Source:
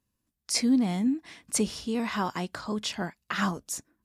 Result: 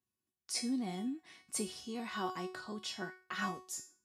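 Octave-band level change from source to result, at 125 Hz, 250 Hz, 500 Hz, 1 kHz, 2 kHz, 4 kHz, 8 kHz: -13.0, -12.5, -9.0, -8.0, -7.5, -8.5, -9.0 dB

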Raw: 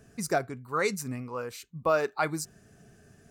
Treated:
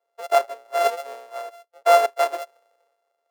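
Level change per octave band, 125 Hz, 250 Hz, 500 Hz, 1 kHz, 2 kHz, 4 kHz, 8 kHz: under -40 dB, under -10 dB, +8.5 dB, +11.0 dB, +2.5 dB, +8.0 dB, +0.5 dB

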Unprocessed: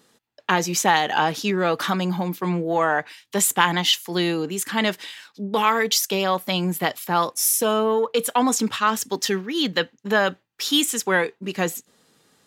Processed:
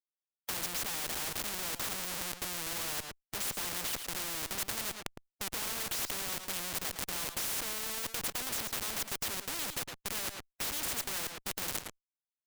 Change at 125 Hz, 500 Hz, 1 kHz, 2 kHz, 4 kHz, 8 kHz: -19.5, -23.0, -21.0, -15.5, -13.0, -9.5 dB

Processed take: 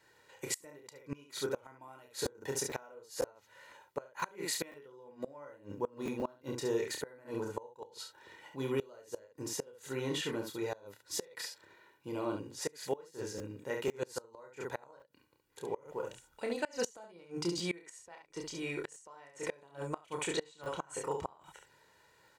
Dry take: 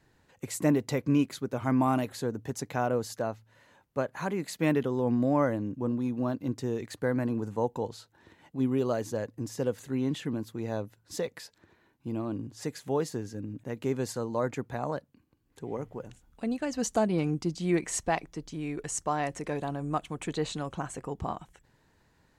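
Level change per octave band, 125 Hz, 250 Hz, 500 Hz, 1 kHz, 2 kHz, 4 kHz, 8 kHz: -14.0, -13.0, -6.5, -10.0, -4.0, +1.0, -2.5 dB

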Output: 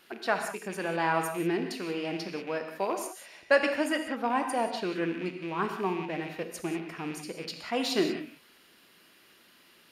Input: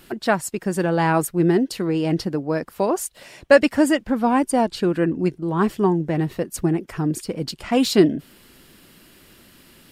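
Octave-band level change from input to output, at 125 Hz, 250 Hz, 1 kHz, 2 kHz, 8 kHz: -17.0, -13.0, -6.5, -5.0, -11.0 dB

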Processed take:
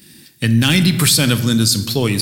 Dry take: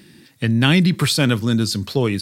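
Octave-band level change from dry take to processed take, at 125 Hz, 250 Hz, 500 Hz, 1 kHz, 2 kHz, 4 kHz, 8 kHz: +2.5, +2.0, 0.0, 0.0, +2.5, +5.5, +11.0 dB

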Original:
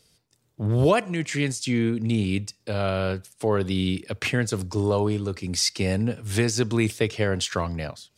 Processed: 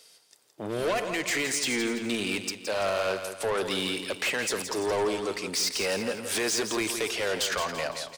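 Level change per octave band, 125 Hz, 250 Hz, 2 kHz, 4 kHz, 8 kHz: -19.0, -8.0, +1.0, +1.0, +1.5 dB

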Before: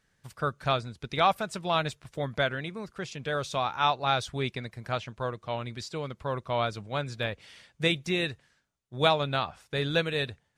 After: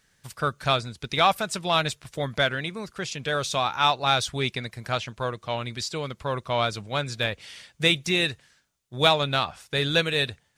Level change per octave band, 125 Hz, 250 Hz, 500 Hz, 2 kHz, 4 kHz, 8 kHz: +3.0, +3.0, +2.5, +5.5, +7.5, +10.0 dB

